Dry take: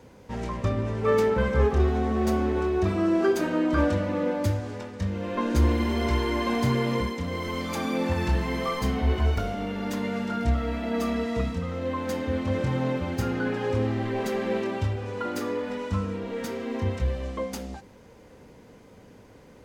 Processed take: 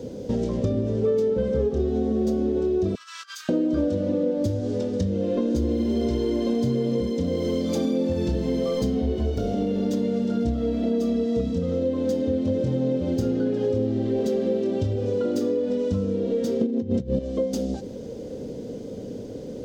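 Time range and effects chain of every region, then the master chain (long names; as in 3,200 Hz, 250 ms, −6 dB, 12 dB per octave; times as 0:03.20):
0:02.95–0:03.49: Butterworth high-pass 1,100 Hz 72 dB per octave + compressor whose output falls as the input rises −40 dBFS, ratio −0.5
0:16.61–0:17.19: parametric band 190 Hz +13 dB 1.9 octaves + compressor whose output falls as the input rises −25 dBFS, ratio −0.5
whole clip: octave-band graphic EQ 125/250/500/1,000/2,000/4,000/8,000 Hz +4/+8/+12/−12/−6/−8/−12 dB; downward compressor 5 to 1, threshold −30 dBFS; flat-topped bell 5,300 Hz +14.5 dB; level +7.5 dB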